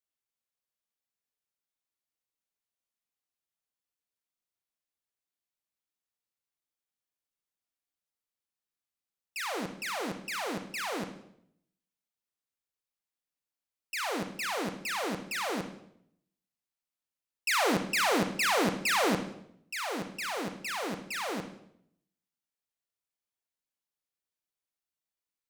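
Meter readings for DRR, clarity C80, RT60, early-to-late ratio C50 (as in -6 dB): 6.0 dB, 11.5 dB, 0.70 s, 9.0 dB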